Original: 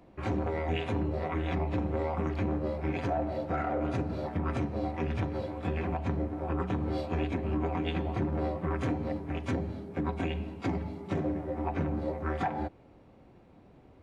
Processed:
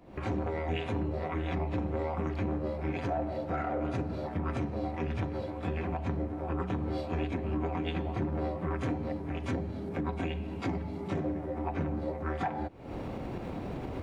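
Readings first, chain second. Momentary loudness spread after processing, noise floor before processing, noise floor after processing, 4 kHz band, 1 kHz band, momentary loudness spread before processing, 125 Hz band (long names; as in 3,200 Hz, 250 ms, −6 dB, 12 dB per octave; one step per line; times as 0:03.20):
3 LU, −57 dBFS, −40 dBFS, −1.0 dB, −1.5 dB, 3 LU, −1.0 dB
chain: camcorder AGC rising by 78 dB per second
level −1.5 dB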